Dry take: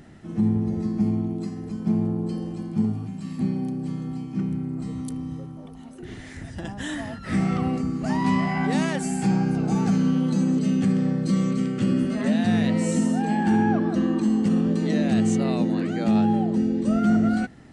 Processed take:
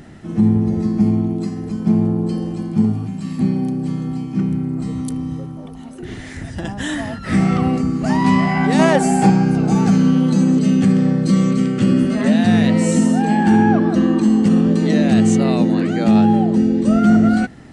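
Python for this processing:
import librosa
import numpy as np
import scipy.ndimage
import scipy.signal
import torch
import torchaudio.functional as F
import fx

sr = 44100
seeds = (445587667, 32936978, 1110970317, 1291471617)

y = fx.peak_eq(x, sr, hz=660.0, db=10.0, octaves=1.9, at=(8.79, 9.3))
y = y * 10.0 ** (7.5 / 20.0)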